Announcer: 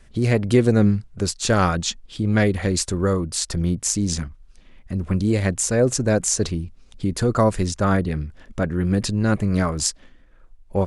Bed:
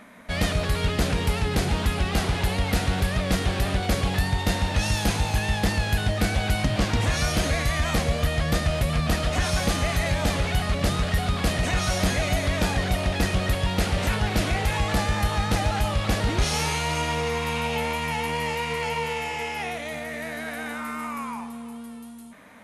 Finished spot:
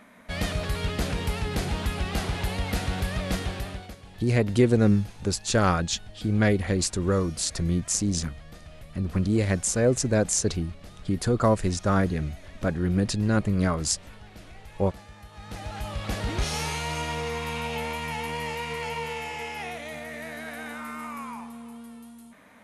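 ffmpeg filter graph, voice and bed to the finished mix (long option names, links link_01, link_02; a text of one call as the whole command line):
ffmpeg -i stem1.wav -i stem2.wav -filter_complex "[0:a]adelay=4050,volume=-3.5dB[link_01];[1:a]volume=14dB,afade=type=out:start_time=3.34:duration=0.62:silence=0.11885,afade=type=in:start_time=15.32:duration=1.06:silence=0.11885[link_02];[link_01][link_02]amix=inputs=2:normalize=0" out.wav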